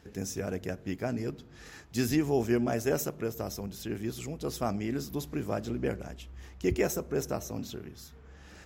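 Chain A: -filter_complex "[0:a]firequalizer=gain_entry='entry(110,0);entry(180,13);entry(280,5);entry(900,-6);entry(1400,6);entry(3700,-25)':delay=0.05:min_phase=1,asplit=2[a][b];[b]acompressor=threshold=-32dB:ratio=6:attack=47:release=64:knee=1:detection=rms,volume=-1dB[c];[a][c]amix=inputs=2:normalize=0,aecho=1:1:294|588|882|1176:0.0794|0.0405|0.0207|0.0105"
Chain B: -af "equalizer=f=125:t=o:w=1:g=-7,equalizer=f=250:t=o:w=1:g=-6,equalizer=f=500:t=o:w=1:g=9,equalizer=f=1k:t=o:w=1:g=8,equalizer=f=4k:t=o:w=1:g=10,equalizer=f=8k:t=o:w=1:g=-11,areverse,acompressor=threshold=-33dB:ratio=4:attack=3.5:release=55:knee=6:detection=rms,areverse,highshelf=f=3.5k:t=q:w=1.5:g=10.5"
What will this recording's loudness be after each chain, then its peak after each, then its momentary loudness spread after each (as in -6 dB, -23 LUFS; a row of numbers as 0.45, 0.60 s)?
-25.0, -34.5 LUFS; -8.5, -16.0 dBFS; 16, 9 LU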